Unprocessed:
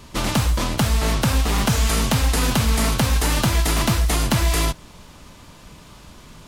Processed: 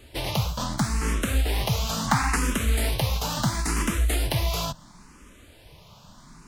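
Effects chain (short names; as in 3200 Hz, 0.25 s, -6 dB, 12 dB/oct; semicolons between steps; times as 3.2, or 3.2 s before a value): spectral gain 2.08–2.36, 700–2900 Hz +9 dB; endless phaser +0.73 Hz; gain -3 dB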